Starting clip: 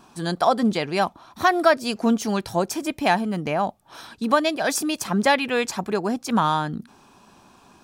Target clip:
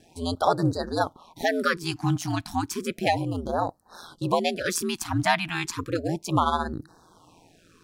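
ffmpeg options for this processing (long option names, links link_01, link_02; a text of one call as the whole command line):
ffmpeg -i in.wav -af "aeval=exprs='val(0)*sin(2*PI*85*n/s)':channel_layout=same,afftfilt=real='re*(1-between(b*sr/1024,430*pow(2700/430,0.5+0.5*sin(2*PI*0.33*pts/sr))/1.41,430*pow(2700/430,0.5+0.5*sin(2*PI*0.33*pts/sr))*1.41))':imag='im*(1-between(b*sr/1024,430*pow(2700/430,0.5+0.5*sin(2*PI*0.33*pts/sr))/1.41,430*pow(2700/430,0.5+0.5*sin(2*PI*0.33*pts/sr))*1.41))':win_size=1024:overlap=0.75" out.wav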